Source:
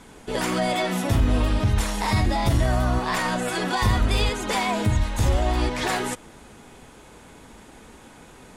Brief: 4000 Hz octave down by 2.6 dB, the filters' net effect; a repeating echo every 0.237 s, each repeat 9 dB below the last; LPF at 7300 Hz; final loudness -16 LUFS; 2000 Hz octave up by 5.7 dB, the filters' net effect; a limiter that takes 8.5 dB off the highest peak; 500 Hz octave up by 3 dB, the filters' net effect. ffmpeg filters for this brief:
-af "lowpass=7.3k,equalizer=f=500:t=o:g=3.5,equalizer=f=2k:t=o:g=8,equalizer=f=4k:t=o:g=-6,alimiter=limit=-16dB:level=0:latency=1,aecho=1:1:237|474|711|948:0.355|0.124|0.0435|0.0152,volume=9dB"

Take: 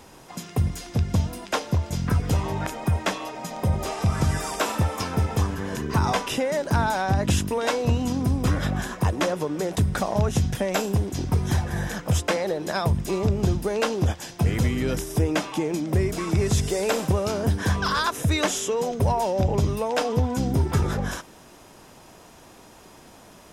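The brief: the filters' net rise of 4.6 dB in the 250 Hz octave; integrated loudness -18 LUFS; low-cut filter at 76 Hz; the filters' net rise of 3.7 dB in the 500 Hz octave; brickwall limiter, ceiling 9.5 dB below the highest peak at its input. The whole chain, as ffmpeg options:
-af "highpass=76,equalizer=f=250:t=o:g=5.5,equalizer=f=500:t=o:g=3,volume=7.5dB,alimiter=limit=-8.5dB:level=0:latency=1"

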